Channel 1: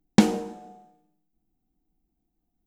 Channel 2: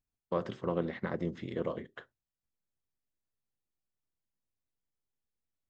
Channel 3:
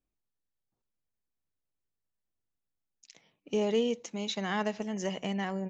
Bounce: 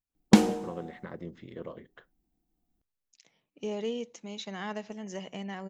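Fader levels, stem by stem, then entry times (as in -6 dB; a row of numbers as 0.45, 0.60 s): -1.0, -6.5, -5.5 dB; 0.15, 0.00, 0.10 s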